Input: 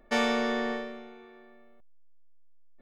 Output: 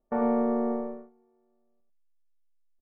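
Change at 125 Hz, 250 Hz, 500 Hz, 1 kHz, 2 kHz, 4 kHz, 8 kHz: no reading, +4.5 dB, +2.5 dB, -0.5 dB, -17.5 dB, under -35 dB, under -30 dB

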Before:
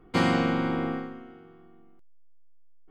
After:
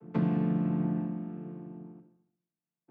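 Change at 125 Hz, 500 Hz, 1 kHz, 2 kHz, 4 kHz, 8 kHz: +2.0 dB, -9.0 dB, -13.5 dB, -19.0 dB, under -20 dB, no reading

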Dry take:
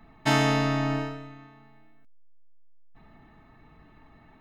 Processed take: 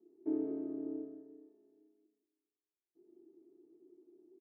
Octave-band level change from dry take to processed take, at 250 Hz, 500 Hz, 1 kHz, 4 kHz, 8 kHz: -9.5 dB, -12.5 dB, under -35 dB, under -40 dB, under -35 dB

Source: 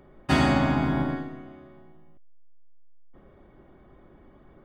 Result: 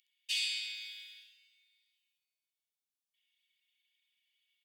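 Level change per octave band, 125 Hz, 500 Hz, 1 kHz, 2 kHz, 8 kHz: under -40 dB, under -40 dB, under -40 dB, -10.5 dB, no reading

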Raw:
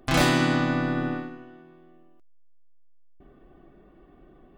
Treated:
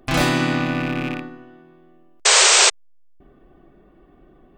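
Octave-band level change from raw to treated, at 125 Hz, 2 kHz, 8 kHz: +2.0 dB, +8.5 dB, no reading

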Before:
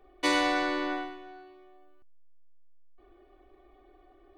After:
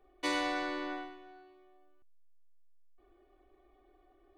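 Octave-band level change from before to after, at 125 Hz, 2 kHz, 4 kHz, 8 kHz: no reading, -7.0 dB, -7.0 dB, -7.0 dB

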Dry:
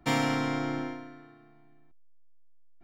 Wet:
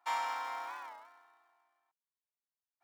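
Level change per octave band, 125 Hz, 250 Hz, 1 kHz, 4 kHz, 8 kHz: under -40 dB, -38.0 dB, -2.0 dB, -10.0 dB, no reading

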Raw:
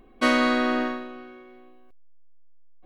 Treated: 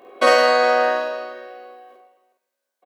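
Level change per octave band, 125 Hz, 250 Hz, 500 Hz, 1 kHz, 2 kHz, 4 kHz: no reading, -10.5 dB, +11.5 dB, +9.5 dB, +6.0 dB, +6.0 dB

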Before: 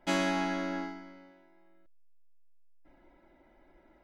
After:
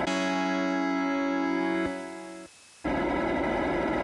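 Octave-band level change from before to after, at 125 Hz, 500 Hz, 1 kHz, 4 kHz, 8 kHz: no reading, +10.5 dB, +9.0 dB, +4.0 dB, +3.5 dB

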